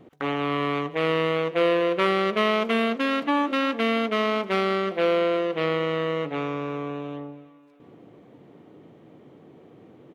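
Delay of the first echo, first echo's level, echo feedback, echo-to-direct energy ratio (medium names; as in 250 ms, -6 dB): 337 ms, -20.0 dB, 50%, -19.0 dB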